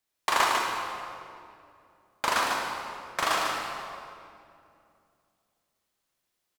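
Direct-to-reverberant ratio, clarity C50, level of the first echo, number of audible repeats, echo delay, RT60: -2.5 dB, -1.0 dB, -5.5 dB, 1, 148 ms, 2.5 s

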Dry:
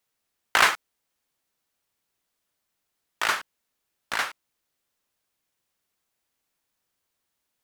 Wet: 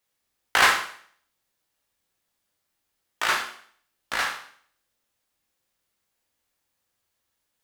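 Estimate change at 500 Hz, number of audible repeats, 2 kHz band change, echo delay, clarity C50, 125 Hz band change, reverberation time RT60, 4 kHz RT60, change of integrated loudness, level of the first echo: +1.5 dB, no echo, +1.5 dB, no echo, 7.5 dB, +2.5 dB, 0.55 s, 0.55 s, +1.0 dB, no echo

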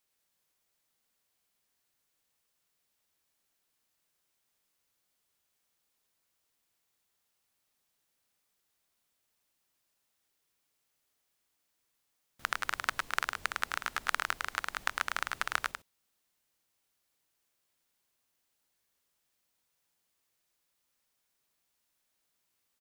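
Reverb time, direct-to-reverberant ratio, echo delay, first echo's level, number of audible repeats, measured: no reverb, no reverb, 105 ms, -4.5 dB, 1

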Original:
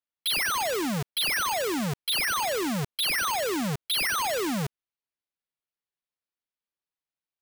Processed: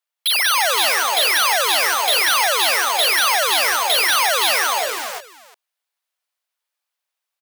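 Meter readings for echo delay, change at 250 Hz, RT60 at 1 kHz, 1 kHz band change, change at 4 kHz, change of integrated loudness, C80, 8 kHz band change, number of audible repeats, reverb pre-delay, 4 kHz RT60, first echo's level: 185 ms, -12.0 dB, no reverb, +12.0 dB, +12.0 dB, +11.0 dB, no reverb, +12.0 dB, 5, no reverb, no reverb, -4.0 dB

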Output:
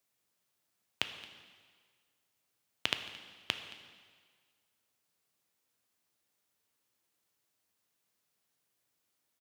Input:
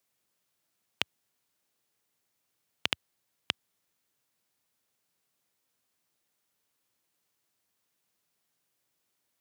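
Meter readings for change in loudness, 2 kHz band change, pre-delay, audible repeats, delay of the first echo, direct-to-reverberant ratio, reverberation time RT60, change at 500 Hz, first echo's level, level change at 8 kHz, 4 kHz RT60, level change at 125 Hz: -3.0 dB, -2.0 dB, 4 ms, 1, 222 ms, 7.5 dB, 1.7 s, -1.5 dB, -21.0 dB, -2.0 dB, 1.6 s, -2.0 dB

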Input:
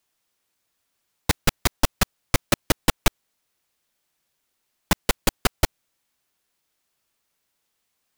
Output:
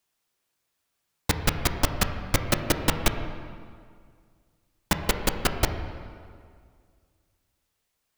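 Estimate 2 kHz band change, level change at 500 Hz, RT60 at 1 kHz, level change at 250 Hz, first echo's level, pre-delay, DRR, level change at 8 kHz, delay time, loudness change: -2.0 dB, -1.5 dB, 2.0 s, -1.5 dB, no echo, 9 ms, 5.5 dB, -3.0 dB, no echo, -2.5 dB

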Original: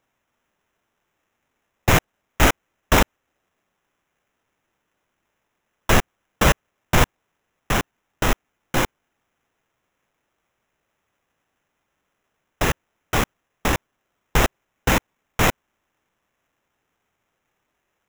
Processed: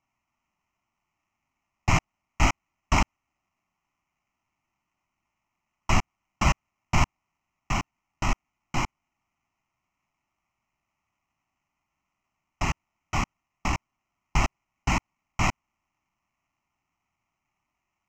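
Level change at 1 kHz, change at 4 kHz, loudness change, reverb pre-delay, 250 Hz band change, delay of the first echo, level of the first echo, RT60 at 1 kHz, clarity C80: -5.0 dB, -8.5 dB, -6.5 dB, no reverb, -7.0 dB, no echo, no echo, no reverb, no reverb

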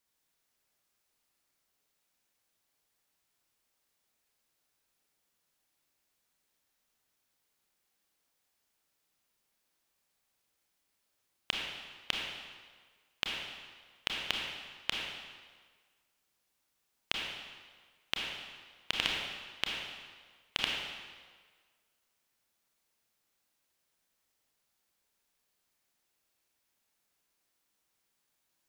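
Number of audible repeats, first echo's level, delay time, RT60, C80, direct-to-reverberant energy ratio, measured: no echo, no echo, no echo, 1.6 s, 2.0 dB, -1.5 dB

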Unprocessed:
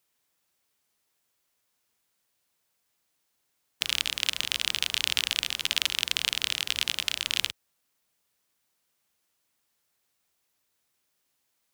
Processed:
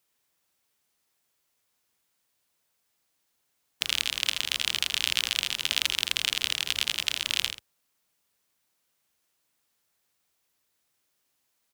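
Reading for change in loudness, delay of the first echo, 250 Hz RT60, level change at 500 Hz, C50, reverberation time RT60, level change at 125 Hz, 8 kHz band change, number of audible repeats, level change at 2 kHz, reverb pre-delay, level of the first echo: +0.5 dB, 82 ms, no reverb, +0.5 dB, no reverb, no reverb, +0.5 dB, +0.5 dB, 1, +0.5 dB, no reverb, -9.5 dB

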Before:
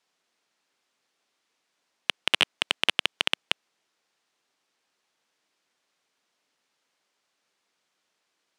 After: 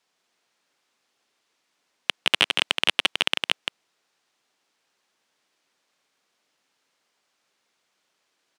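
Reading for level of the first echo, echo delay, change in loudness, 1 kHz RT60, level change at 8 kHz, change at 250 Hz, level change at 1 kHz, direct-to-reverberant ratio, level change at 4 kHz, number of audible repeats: -5.0 dB, 164 ms, +3.0 dB, no reverb, +3.0 dB, +3.0 dB, +3.0 dB, no reverb, +3.0 dB, 1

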